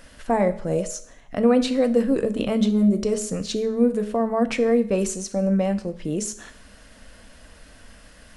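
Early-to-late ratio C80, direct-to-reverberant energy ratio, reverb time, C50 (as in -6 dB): 17.5 dB, 9.0 dB, 0.60 s, 14.0 dB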